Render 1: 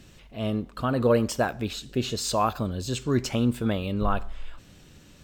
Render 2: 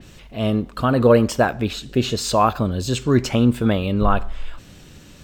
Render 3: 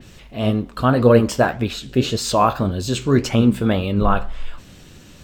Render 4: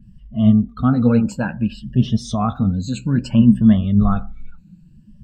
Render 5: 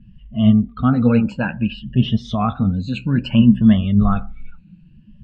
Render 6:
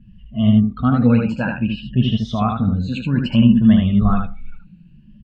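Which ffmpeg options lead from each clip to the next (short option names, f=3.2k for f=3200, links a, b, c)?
-af "adynamicequalizer=threshold=0.00562:dfrequency=3800:dqfactor=0.7:tfrequency=3800:tqfactor=0.7:attack=5:release=100:ratio=0.375:range=3.5:mode=cutabove:tftype=highshelf,volume=7.5dB"
-af "flanger=delay=7.9:depth=8.4:regen=63:speed=1.8:shape=sinusoidal,volume=5dB"
-af "afftfilt=real='re*pow(10,12/40*sin(2*PI*(1.3*log(max(b,1)*sr/1024/100)/log(2)-(0.6)*(pts-256)/sr)))':imag='im*pow(10,12/40*sin(2*PI*(1.3*log(max(b,1)*sr/1024/100)/log(2)-(0.6)*(pts-256)/sr)))':win_size=1024:overlap=0.75,afftdn=nr=20:nf=-32,lowshelf=f=280:t=q:w=3:g=8.5,volume=-9dB"
-af "lowpass=f=2.8k:t=q:w=2.7"
-af "aecho=1:1:76:0.631,volume=-1dB"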